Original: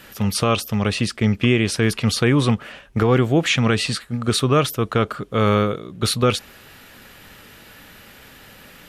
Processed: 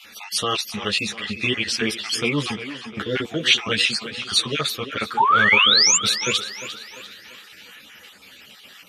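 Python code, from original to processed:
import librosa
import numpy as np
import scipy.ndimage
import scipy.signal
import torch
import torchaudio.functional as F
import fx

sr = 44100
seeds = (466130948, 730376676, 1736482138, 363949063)

p1 = fx.spec_dropout(x, sr, seeds[0], share_pct=33)
p2 = fx.weighting(p1, sr, curve='D')
p3 = fx.spec_paint(p2, sr, seeds[1], shape='rise', start_s=5.17, length_s=0.8, low_hz=820.0, high_hz=7500.0, level_db=-10.0)
p4 = p3 + fx.echo_tape(p3, sr, ms=347, feedback_pct=50, wet_db=-10.5, lp_hz=5800.0, drive_db=-2.0, wow_cents=39, dry=0)
p5 = fx.ensemble(p4, sr)
y = F.gain(torch.from_numpy(p5), -2.5).numpy()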